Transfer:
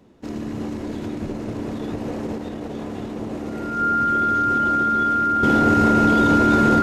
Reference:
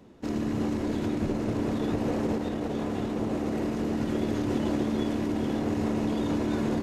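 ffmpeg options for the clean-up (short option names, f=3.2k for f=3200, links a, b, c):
-af "bandreject=f=1.4k:w=30,asetnsamples=n=441:p=0,asendcmd='5.43 volume volume -10dB',volume=0dB"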